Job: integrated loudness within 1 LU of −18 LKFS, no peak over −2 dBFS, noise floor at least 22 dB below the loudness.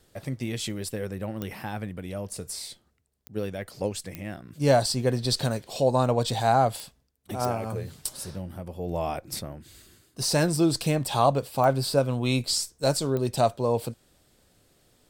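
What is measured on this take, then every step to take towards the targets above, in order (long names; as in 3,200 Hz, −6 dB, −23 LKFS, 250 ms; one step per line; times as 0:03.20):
number of clicks 7; integrated loudness −27.0 LKFS; sample peak −8.0 dBFS; target loudness −18.0 LKFS
→ click removal
level +9 dB
brickwall limiter −2 dBFS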